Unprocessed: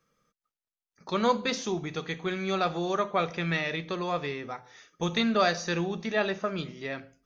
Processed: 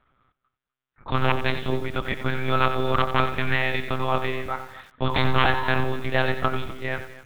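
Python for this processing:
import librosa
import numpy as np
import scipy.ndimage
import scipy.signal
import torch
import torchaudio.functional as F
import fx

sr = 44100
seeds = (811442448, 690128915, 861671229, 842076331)

p1 = fx.peak_eq(x, sr, hz=1400.0, db=6.5, octaves=0.74)
p2 = 10.0 ** (-19.0 / 20.0) * (np.abs((p1 / 10.0 ** (-19.0 / 20.0) + 3.0) % 4.0 - 2.0) - 1.0)
p3 = fx.dmg_tone(p2, sr, hz=980.0, level_db=-32.0, at=(5.07, 5.83), fade=0.02)
p4 = fx.lpc_monotone(p3, sr, seeds[0], pitch_hz=130.0, order=8)
p5 = p4 + fx.echo_single(p4, sr, ms=251, db=-17.5, dry=0)
p6 = fx.echo_crushed(p5, sr, ms=90, feedback_pct=35, bits=8, wet_db=-10.5)
y = p6 * librosa.db_to_amplitude(5.5)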